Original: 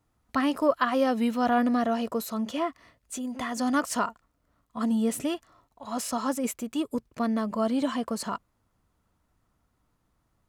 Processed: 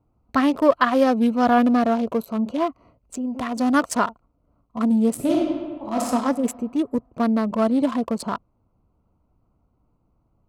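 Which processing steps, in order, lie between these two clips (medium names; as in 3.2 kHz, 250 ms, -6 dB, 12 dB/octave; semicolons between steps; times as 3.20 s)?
local Wiener filter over 25 samples; 1.06–2.68 s: band-stop 1.9 kHz, Q 15; 5.14–6.07 s: reverb throw, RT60 1.6 s, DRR -3 dB; trim +7 dB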